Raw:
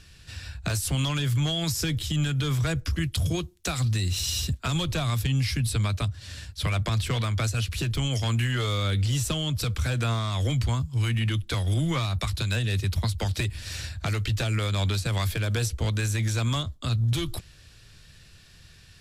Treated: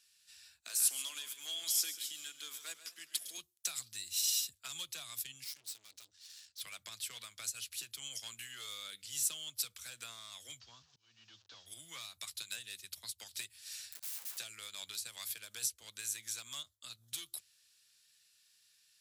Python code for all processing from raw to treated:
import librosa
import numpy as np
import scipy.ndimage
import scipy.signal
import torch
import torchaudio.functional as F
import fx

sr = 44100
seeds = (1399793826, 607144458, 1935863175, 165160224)

y = fx.chain(x, sr, fx.highpass(hz=240.0, slope=24),
    fx.echo_single(ms=139, db=-10.0),
    fx.echo_warbled(ms=105, feedback_pct=73, rate_hz=2.8, cents=103, wet_db=-16.0), at=(0.6, 3.38))
y = fx.chain(y, sr, fx.lowpass(hz=6500.0, slope=24),
    fx.high_shelf(hz=4000.0, db=11.5),
    fx.tube_stage(drive_db=34.0, bias=0.45), at=(5.44, 6.61))
y = fx.chain(y, sr, fx.delta_mod(bps=32000, step_db=-40.0),
    fx.peak_eq(hz=2100.0, db=-9.5, octaves=0.39),
    fx.auto_swell(attack_ms=456.0), at=(10.6, 11.66))
y = fx.chain(y, sr, fx.overflow_wrap(gain_db=34.0),
    fx.band_squash(depth_pct=40), at=(13.92, 14.38))
y = np.diff(y, prepend=0.0)
y = fx.hum_notches(y, sr, base_hz=50, count=2)
y = fx.upward_expand(y, sr, threshold_db=-47.0, expansion=1.5)
y = y * 10.0 ** (1.0 / 20.0)